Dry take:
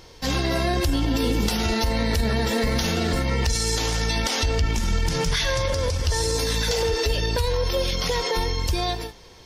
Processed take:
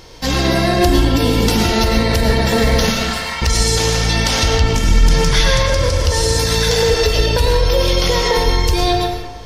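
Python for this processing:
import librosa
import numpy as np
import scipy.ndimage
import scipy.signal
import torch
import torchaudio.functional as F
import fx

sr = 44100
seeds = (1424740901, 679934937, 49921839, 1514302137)

y = fx.highpass(x, sr, hz=850.0, slope=24, at=(2.9, 3.42))
y = fx.rev_freeverb(y, sr, rt60_s=1.1, hf_ratio=0.5, predelay_ms=70, drr_db=1.0)
y = F.gain(torch.from_numpy(y), 6.5).numpy()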